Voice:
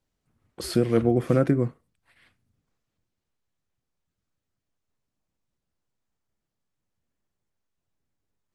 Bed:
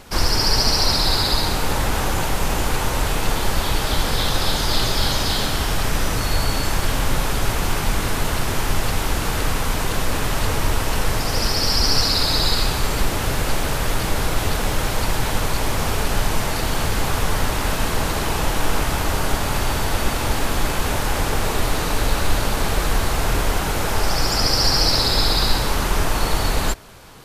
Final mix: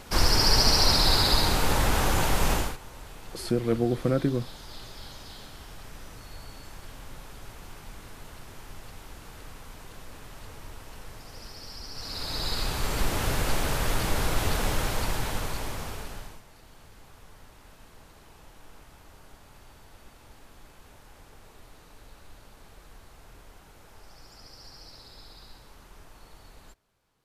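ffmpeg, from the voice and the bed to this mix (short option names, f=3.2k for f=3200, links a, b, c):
-filter_complex "[0:a]adelay=2750,volume=-4dB[a];[1:a]volume=15dB,afade=t=out:st=2.52:d=0.25:silence=0.0944061,afade=t=in:st=11.94:d=1.26:silence=0.125893,afade=t=out:st=14.66:d=1.76:silence=0.0530884[b];[a][b]amix=inputs=2:normalize=0"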